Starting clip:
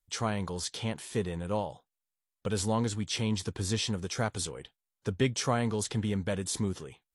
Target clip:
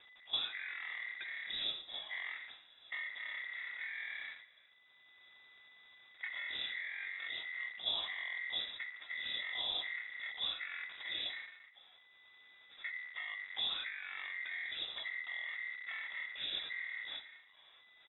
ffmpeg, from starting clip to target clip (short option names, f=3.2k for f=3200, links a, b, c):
-filter_complex "[0:a]aeval=exprs='val(0)+0.5*0.0211*sgn(val(0))':c=same,agate=range=-22dB:threshold=-33dB:ratio=16:detection=peak,bandreject=f=60:t=h:w=6,bandreject=f=120:t=h:w=6,bandreject=f=180:t=h:w=6,bandreject=f=240:t=h:w=6,alimiter=limit=-23dB:level=0:latency=1:release=33,acompressor=threshold=-55dB:ratio=2,asetrate=17420,aresample=44100,aeval=exprs='val(0)*sin(2*PI*1900*n/s)':c=same,lowshelf=f=630:t=q:w=3:g=8,asplit=2[a][b];[b]aecho=0:1:63|126|189|252:0.15|0.0703|0.0331|0.0155[c];[a][c]amix=inputs=2:normalize=0,lowpass=f=3.3k:t=q:w=0.5098,lowpass=f=3.3k:t=q:w=0.6013,lowpass=f=3.3k:t=q:w=0.9,lowpass=f=3.3k:t=q:w=2.563,afreqshift=-3900,volume=5dB"